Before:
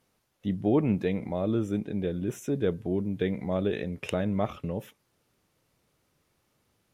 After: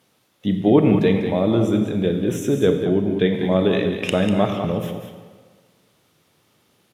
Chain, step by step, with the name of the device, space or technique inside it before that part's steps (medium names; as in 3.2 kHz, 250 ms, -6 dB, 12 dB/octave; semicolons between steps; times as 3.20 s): PA in a hall (high-pass 110 Hz; peaking EQ 3.4 kHz +5 dB 0.49 oct; delay 195 ms -8.5 dB; reverberation RT60 1.5 s, pre-delay 24 ms, DRR 6.5 dB); 2.85–3.34 s: treble shelf 7.6 kHz -7.5 dB; trim +9 dB